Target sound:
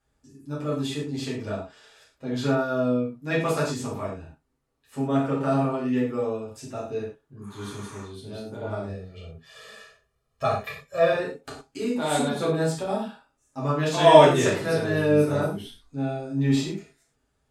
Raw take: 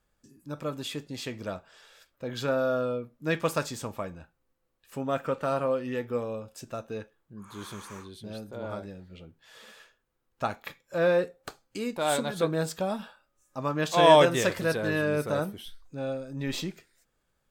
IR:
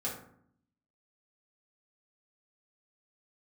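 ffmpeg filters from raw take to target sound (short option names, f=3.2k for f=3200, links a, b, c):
-filter_complex "[0:a]asettb=1/sr,asplit=3[a][b][c];[a]atrim=end=8.844[d];[b]atrim=start=8.84:end=11.13,asetpts=PTS-STARTPTS,afade=t=in:d=0.004:c=qsin,afade=t=out:st=2.286:d=0.004:c=qsin,aecho=1:1:1.7:0.97,atrim=end_sample=100989[e];[c]atrim=start=11.126[f];[d][e]acrossfade=d=0.004:c1=hsin:c2=qsin[g];[g][f]acrossfade=d=0.004:c1=qsin:c2=hsin[h];[1:a]atrim=start_sample=2205,atrim=end_sample=3087,asetrate=23814,aresample=44100[i];[h][i]afir=irnorm=-1:irlink=0,volume=-3.5dB"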